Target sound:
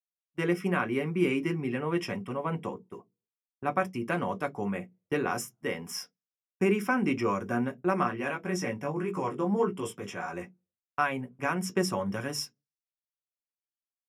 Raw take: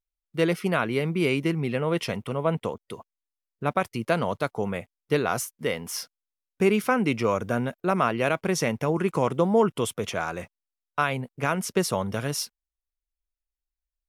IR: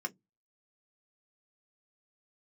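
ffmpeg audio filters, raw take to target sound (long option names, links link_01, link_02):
-filter_complex "[0:a]agate=range=-25dB:threshold=-38dB:ratio=16:detection=peak,asettb=1/sr,asplit=3[link_01][link_02][link_03];[link_01]atrim=end=8.034[link_04];[link_02]atrim=start=8.03:end=10.33,asetpts=PTS-STARTPTS,afade=type=in:duration=0.004:curve=qsin,afade=type=out:start_time=2.296:duration=0.004:curve=qsin,flanger=delay=16.5:depth=4.5:speed=1.8[link_05];[link_03]atrim=start=10.326[link_06];[link_04][link_05]acrossfade=duration=0.004:curve1=hsin:curve2=qsin[link_07];[link_07][link_06]acrossfade=duration=0.004:curve1=qsin:curve2=hsin[link_08];[1:a]atrim=start_sample=2205[link_09];[link_08][link_09]afir=irnorm=-1:irlink=0,volume=-5.5dB"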